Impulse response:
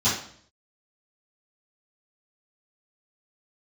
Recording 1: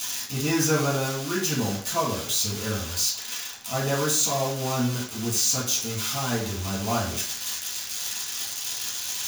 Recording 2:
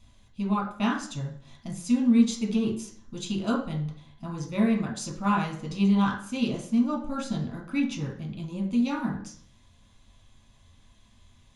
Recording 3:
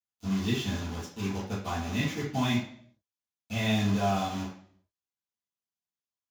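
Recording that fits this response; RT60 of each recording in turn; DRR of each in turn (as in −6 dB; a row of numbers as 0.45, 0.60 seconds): 3; 0.55, 0.55, 0.55 seconds; −7.5, −0.5, −16.0 decibels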